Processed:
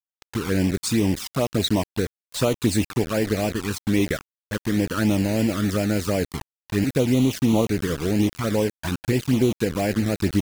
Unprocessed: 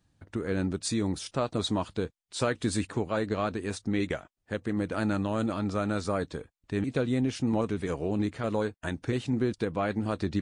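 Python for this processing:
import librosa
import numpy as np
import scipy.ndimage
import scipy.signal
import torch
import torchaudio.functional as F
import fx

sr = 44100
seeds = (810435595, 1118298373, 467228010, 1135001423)

y = fx.quant_dither(x, sr, seeds[0], bits=6, dither='none')
y = fx.env_flanger(y, sr, rest_ms=2.4, full_db=-23.0)
y = y * librosa.db_to_amplitude(8.5)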